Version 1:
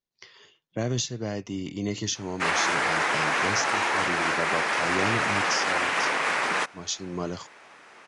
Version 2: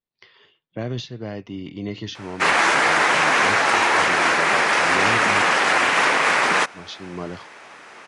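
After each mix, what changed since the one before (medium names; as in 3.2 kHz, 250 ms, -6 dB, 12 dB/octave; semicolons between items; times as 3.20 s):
speech: add low-pass 4.1 kHz 24 dB/octave; background +7.5 dB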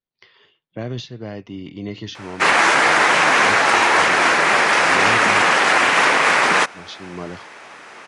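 background +3.0 dB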